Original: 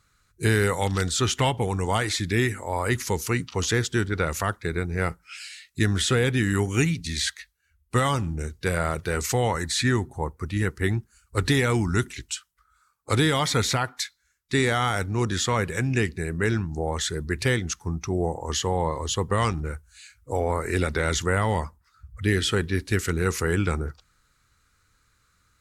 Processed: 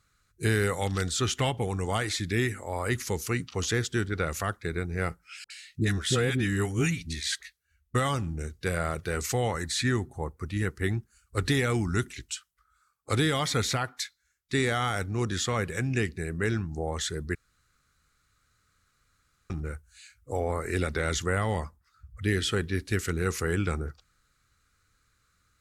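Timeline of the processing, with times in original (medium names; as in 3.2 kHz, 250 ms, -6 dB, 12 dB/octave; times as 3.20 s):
5.44–7.95 s: phase dispersion highs, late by 61 ms, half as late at 720 Hz
17.35–19.50 s: room tone
whole clip: band-stop 940 Hz, Q 8.3; trim -4 dB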